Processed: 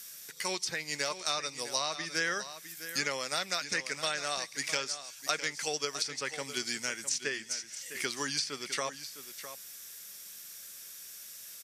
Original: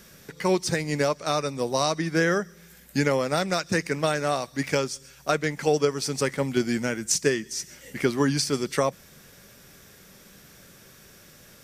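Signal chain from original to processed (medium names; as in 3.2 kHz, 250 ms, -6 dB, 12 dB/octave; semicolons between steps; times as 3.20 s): pre-emphasis filter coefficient 0.97; low-pass that closes with the level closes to 2.8 kHz, closed at -31 dBFS; delay 657 ms -12 dB; trim +7.5 dB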